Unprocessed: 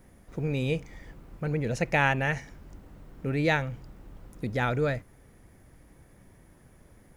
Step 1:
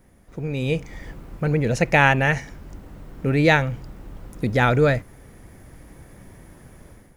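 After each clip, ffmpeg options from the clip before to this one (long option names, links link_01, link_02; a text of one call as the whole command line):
ffmpeg -i in.wav -af "dynaudnorm=framelen=530:gausssize=3:maxgain=10.5dB" out.wav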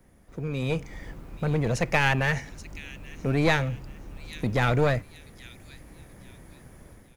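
ffmpeg -i in.wav -filter_complex "[0:a]acrossover=split=130|2600[link_01][link_02][link_03];[link_02]aeval=exprs='clip(val(0),-1,0.0562)':channel_layout=same[link_04];[link_03]aecho=1:1:829|1658|2487:0.299|0.0955|0.0306[link_05];[link_01][link_04][link_05]amix=inputs=3:normalize=0,volume=-3dB" out.wav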